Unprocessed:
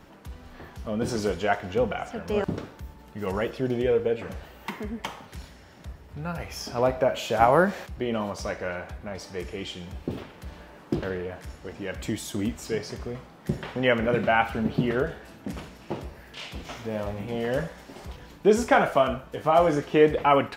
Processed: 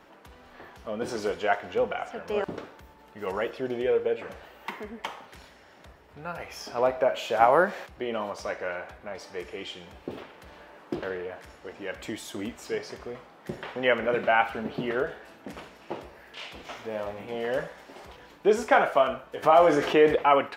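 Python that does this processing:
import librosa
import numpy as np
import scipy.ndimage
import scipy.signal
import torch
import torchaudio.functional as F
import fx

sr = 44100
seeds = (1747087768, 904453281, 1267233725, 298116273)

y = fx.env_flatten(x, sr, amount_pct=50, at=(19.42, 20.15), fade=0.02)
y = fx.bass_treble(y, sr, bass_db=-14, treble_db=-6)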